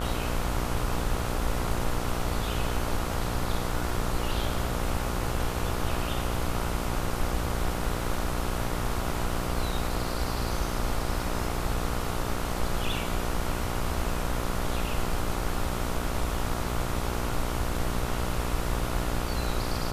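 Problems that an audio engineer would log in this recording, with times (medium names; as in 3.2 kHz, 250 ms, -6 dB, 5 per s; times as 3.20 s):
buzz 60 Hz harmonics 24 -33 dBFS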